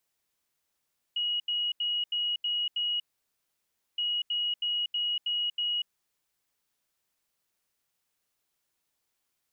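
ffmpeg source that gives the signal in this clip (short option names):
-f lavfi -i "aevalsrc='0.0473*sin(2*PI*2900*t)*clip(min(mod(mod(t,2.82),0.32),0.24-mod(mod(t,2.82),0.32))/0.005,0,1)*lt(mod(t,2.82),1.92)':d=5.64:s=44100"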